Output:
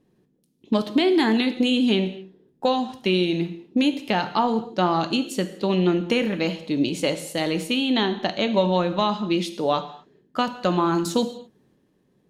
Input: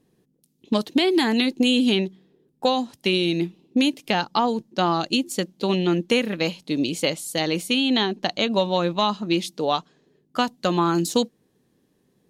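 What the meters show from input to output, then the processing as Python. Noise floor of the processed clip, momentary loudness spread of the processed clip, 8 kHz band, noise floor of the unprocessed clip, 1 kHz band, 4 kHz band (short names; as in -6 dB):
-66 dBFS, 7 LU, -4.0 dB, -67 dBFS, 0.0 dB, -3.0 dB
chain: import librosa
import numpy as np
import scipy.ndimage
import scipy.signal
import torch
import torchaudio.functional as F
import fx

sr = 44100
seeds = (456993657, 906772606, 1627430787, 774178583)

y = fx.high_shelf(x, sr, hz=4200.0, db=-10.0)
y = fx.transient(y, sr, attack_db=0, sustain_db=4)
y = fx.rev_gated(y, sr, seeds[0], gate_ms=270, shape='falling', drr_db=8.5)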